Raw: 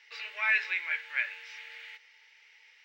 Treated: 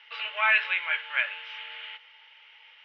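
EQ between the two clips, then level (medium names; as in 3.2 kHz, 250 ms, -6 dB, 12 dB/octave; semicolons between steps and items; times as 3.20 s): resonant low-pass 3.1 kHz, resonance Q 6.4; bass shelf 490 Hz +4.5 dB; high-order bell 880 Hz +13 dB; -3.5 dB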